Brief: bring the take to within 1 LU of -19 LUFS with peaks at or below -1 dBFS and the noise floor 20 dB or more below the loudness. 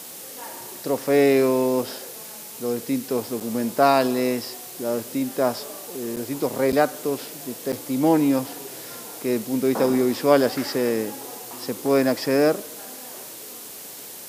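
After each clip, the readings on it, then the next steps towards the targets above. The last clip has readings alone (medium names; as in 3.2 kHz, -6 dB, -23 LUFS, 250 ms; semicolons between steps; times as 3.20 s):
dropouts 4; longest dropout 7.3 ms; noise floor -39 dBFS; noise floor target -43 dBFS; loudness -23.0 LUFS; peak level -4.0 dBFS; loudness target -19.0 LUFS
-> interpolate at 3.40/6.16/6.72/7.72 s, 7.3 ms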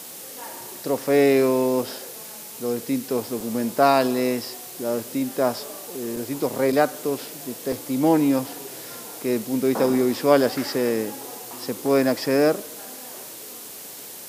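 dropouts 0; noise floor -39 dBFS; noise floor target -43 dBFS
-> noise reduction 6 dB, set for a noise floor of -39 dBFS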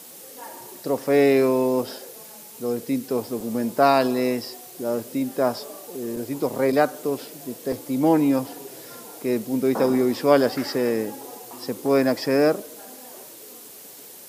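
noise floor -43 dBFS; loudness -23.0 LUFS; peak level -4.0 dBFS; loudness target -19.0 LUFS
-> trim +4 dB; peak limiter -1 dBFS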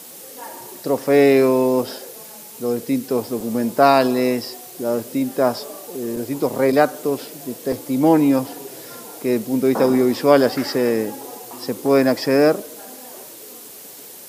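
loudness -19.0 LUFS; peak level -1.0 dBFS; noise floor -39 dBFS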